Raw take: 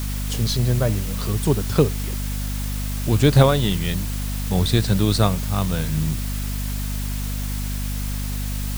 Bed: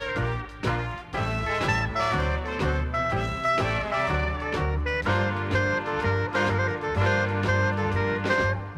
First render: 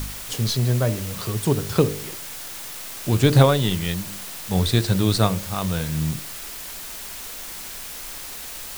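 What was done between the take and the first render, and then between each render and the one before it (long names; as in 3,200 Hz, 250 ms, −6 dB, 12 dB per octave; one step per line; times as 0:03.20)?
hum removal 50 Hz, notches 12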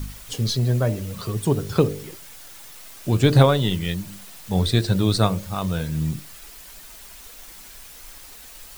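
broadband denoise 9 dB, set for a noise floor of −35 dBFS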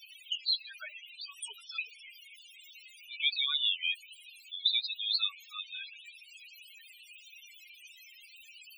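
high-pass with resonance 2,500 Hz, resonance Q 2.4
spectral peaks only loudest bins 8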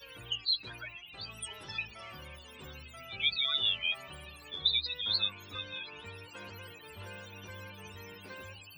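mix in bed −24 dB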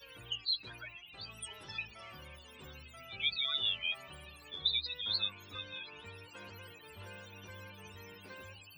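level −3.5 dB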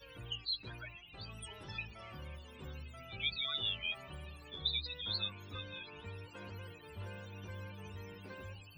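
spectral tilt −2 dB per octave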